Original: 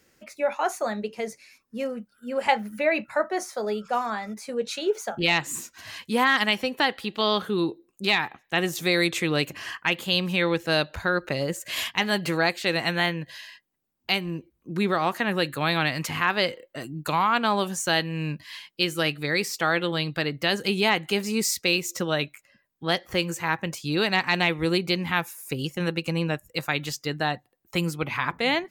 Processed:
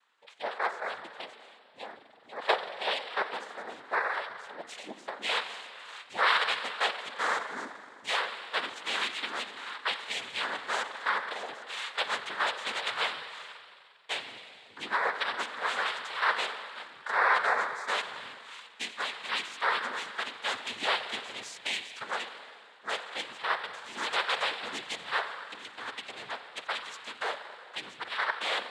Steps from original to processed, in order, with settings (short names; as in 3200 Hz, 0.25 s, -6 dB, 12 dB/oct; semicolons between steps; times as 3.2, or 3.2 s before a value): ladder band-pass 1400 Hz, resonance 30%; spring tank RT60 2.2 s, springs 41 ms, chirp 50 ms, DRR 8 dB; noise vocoder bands 6; gain +7.5 dB